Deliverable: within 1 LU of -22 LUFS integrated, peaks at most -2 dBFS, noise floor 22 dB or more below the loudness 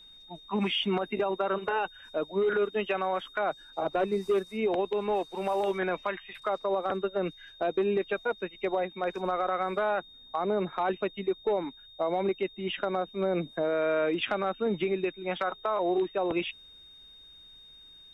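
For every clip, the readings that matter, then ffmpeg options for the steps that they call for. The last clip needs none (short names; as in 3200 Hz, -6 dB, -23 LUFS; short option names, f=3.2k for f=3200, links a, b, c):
steady tone 3700 Hz; tone level -50 dBFS; loudness -30.5 LUFS; peak -17.0 dBFS; loudness target -22.0 LUFS
-> -af "bandreject=f=3.7k:w=30"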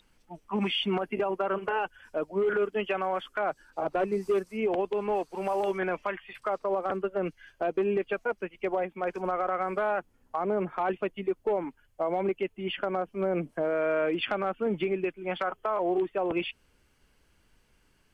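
steady tone none; loudness -30.5 LUFS; peak -17.0 dBFS; loudness target -22.0 LUFS
-> -af "volume=8.5dB"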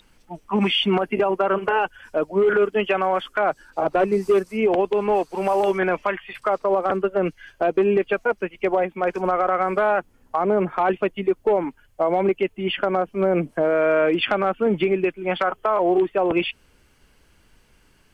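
loudness -22.0 LUFS; peak -8.5 dBFS; noise floor -59 dBFS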